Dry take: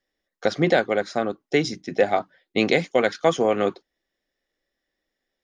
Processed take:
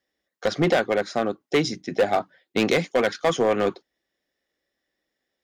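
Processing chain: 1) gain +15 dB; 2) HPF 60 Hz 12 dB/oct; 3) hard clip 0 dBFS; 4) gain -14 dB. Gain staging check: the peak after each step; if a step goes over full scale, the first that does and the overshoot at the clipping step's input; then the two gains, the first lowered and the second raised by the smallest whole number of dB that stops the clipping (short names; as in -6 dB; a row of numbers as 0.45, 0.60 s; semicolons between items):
+9.5, +9.5, 0.0, -14.0 dBFS; step 1, 9.5 dB; step 1 +5 dB, step 4 -4 dB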